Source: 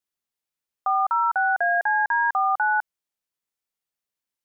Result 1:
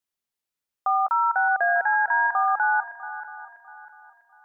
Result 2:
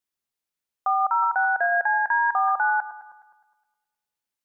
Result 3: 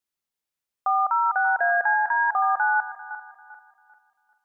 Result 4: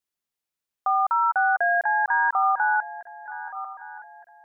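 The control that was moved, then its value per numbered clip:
regenerating reverse delay, time: 0.324, 0.104, 0.197, 0.608 s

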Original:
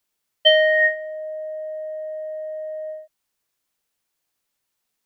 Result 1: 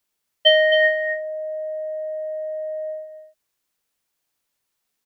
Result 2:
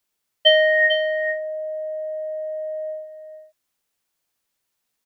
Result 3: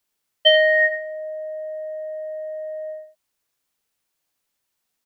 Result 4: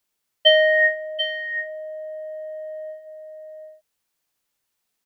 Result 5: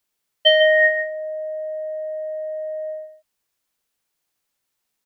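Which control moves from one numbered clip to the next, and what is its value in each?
echo, time: 265, 447, 76, 737, 148 ms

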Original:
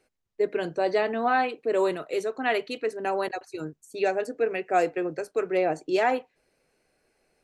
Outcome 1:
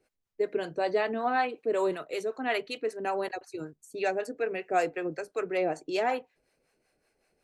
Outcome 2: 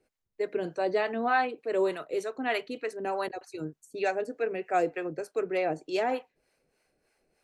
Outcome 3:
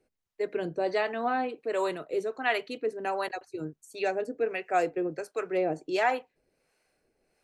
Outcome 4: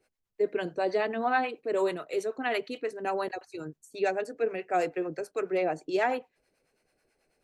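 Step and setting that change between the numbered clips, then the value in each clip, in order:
harmonic tremolo, rate: 5.3, 3.3, 1.4, 9.2 Hz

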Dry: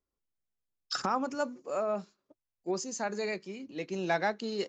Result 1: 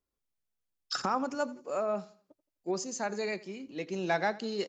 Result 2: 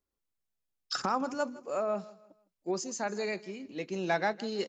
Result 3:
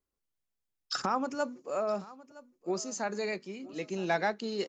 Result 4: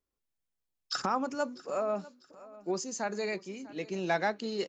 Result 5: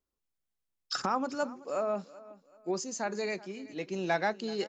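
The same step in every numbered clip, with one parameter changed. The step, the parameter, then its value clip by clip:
feedback echo, time: 85, 159, 965, 646, 380 ms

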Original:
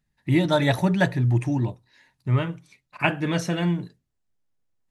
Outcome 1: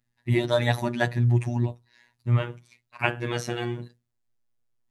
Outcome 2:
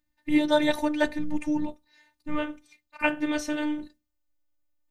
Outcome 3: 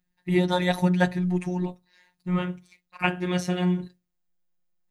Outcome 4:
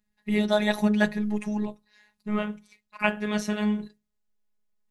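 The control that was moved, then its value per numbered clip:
robotiser, frequency: 120, 300, 180, 210 Hz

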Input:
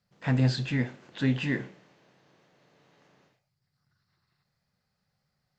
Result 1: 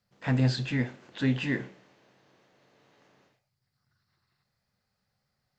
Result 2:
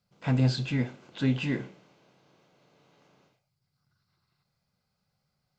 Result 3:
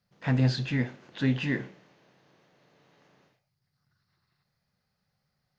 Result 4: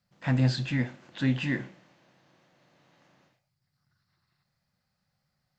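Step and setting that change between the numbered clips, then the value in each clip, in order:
notch, frequency: 160, 1800, 7600, 430 Hz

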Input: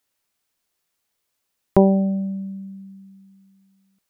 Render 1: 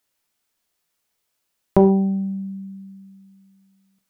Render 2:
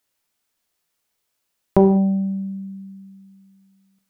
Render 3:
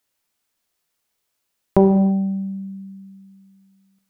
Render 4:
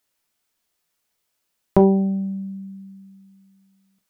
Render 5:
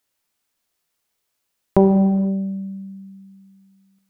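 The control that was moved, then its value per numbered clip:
non-linear reverb, gate: 150, 220, 360, 90, 530 ms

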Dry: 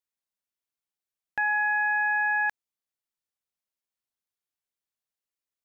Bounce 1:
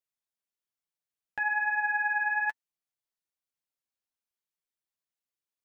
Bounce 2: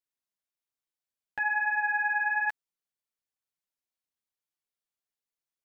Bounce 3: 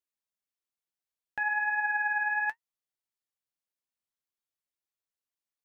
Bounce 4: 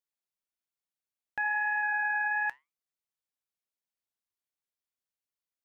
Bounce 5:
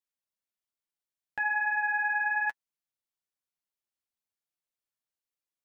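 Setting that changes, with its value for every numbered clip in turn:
flange, regen: +20, 0, +50, -80, -25%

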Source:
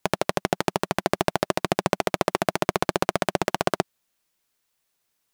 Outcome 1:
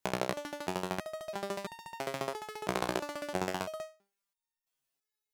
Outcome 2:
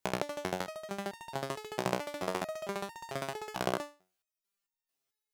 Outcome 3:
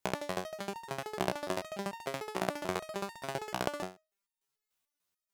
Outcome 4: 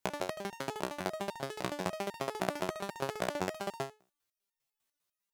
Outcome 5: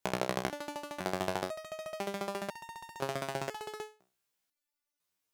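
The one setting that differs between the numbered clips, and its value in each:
stepped resonator, rate: 3, 4.5, 6.8, 10, 2 Hz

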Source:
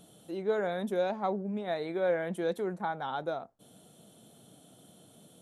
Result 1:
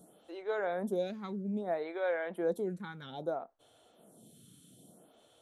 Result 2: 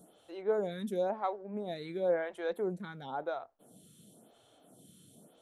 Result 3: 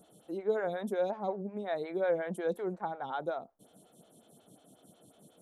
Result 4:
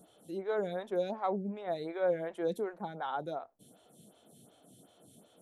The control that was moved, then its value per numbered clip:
photocell phaser, rate: 0.61, 0.96, 5.5, 2.7 Hz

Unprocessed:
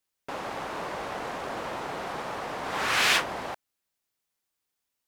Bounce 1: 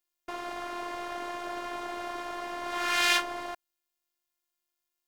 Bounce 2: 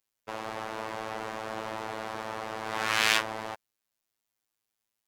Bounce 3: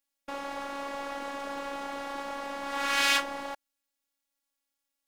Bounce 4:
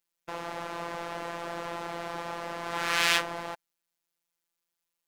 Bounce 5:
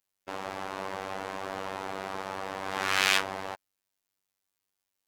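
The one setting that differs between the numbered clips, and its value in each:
robotiser, frequency: 350, 110, 280, 170, 96 Hz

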